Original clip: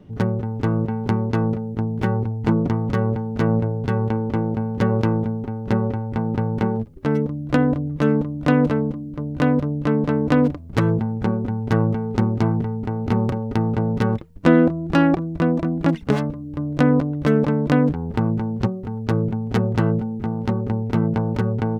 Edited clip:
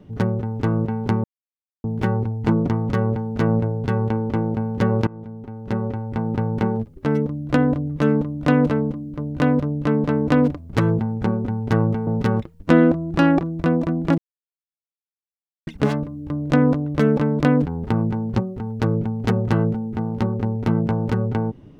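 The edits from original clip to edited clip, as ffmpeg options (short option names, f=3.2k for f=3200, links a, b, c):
-filter_complex "[0:a]asplit=6[a][b][c][d][e][f];[a]atrim=end=1.24,asetpts=PTS-STARTPTS,afade=t=out:st=1.236:d=0.004:c=hsin[g];[b]atrim=start=1.24:end=1.84,asetpts=PTS-STARTPTS,volume=0[h];[c]atrim=start=1.84:end=5.07,asetpts=PTS-STARTPTS,afade=t=in:d=0.004:c=hsin,afade=t=out:st=3.226:d=0.004:c=hsin:silence=0.0841395[i];[d]atrim=start=5.07:end=12.072,asetpts=PTS-STARTPTS,afade=t=in:d=1.63:c=qsin:silence=0.0841395[j];[e]atrim=start=13.828:end=15.94,asetpts=PTS-STARTPTS,afade=t=out:st=2.108:d=0.004:c=hsin,apad=pad_dur=1.49[k];[f]atrim=start=15.94,asetpts=PTS-STARTPTS,afade=t=in:d=0.004:c=hsin[l];[g][h][i][j]concat=n=4:v=0:a=1[m];[k][l]concat=n=2:v=0:a=1[n];[m][n]acrossfade=d=0.004:c1=hsin:c2=hsin"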